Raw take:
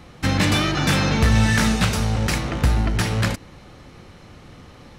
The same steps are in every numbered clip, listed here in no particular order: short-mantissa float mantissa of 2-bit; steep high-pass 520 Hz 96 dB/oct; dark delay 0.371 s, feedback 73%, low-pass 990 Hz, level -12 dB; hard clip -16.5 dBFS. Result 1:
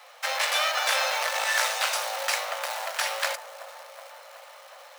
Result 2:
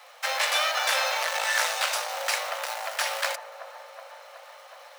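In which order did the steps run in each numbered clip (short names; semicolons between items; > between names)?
hard clip > dark delay > short-mantissa float > steep high-pass; short-mantissa float > dark delay > hard clip > steep high-pass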